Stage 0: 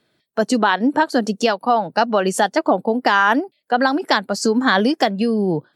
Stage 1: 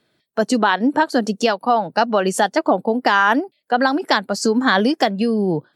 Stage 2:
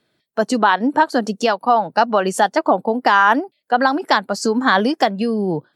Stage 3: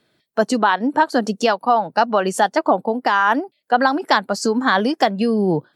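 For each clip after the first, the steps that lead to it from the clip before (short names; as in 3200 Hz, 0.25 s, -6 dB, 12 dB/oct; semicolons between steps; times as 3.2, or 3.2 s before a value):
nothing audible
dynamic EQ 1000 Hz, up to +5 dB, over -28 dBFS, Q 1.1; gain -1.5 dB
vocal rider within 4 dB 0.5 s; gain -1 dB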